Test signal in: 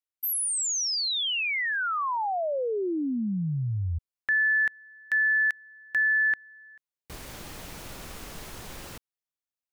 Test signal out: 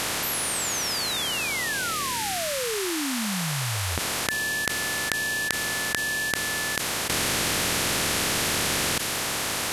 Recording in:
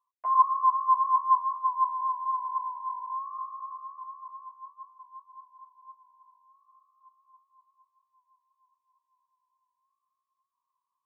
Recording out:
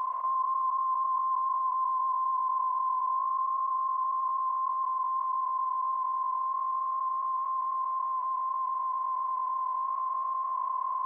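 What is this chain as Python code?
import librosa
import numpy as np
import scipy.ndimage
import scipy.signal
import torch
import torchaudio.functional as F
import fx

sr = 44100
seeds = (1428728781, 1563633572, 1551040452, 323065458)

y = fx.bin_compress(x, sr, power=0.2)
y = fx.dynamic_eq(y, sr, hz=890.0, q=0.96, threshold_db=-28.0, ratio=4.0, max_db=-4)
y = fx.env_flatten(y, sr, amount_pct=70)
y = F.gain(torch.from_numpy(y), -10.0).numpy()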